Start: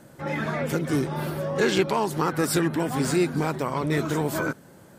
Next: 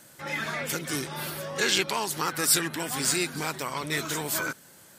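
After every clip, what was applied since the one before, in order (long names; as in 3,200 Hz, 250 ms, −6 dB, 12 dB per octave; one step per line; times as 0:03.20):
tilt shelving filter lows −9.5 dB, about 1,400 Hz
level −1 dB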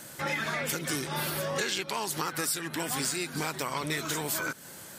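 downward compressor 10 to 1, threshold −35 dBFS, peak gain reduction 18 dB
level +7 dB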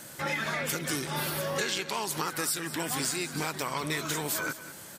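single-tap delay 198 ms −14 dB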